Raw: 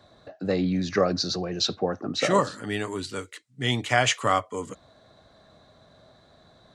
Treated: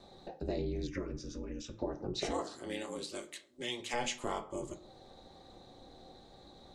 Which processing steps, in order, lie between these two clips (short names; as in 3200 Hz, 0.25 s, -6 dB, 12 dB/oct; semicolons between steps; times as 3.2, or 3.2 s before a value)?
bell 1500 Hz -11.5 dB 1.2 oct; analogue delay 0.128 s, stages 1024, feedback 40%, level -22 dB; ring modulator 120 Hz; 2.31–3.93 HPF 290 Hz -> 810 Hz 6 dB/oct; on a send at -3 dB: reverb RT60 0.30 s, pre-delay 3 ms; on the sum: compressor 2:1, threshold -46 dBFS, peak gain reduction 14 dB; 0.87–1.79 fixed phaser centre 1800 Hz, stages 4; gain +3.5 dB